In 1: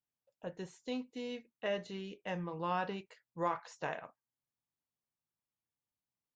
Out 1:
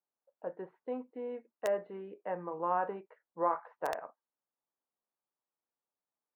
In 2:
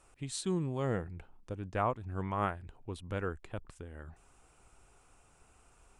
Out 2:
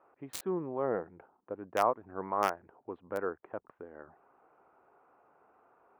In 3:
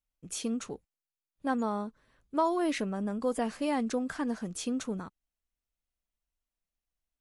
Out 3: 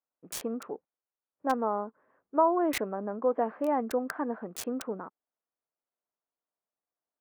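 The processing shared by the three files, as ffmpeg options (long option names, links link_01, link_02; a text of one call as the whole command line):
ffmpeg -i in.wav -filter_complex "[0:a]highpass=400,highshelf=frequency=2600:gain=-5.5,acrossover=split=1600[link_01][link_02];[link_02]acrusher=bits=5:mix=0:aa=0.000001[link_03];[link_01][link_03]amix=inputs=2:normalize=0,volume=6dB" out.wav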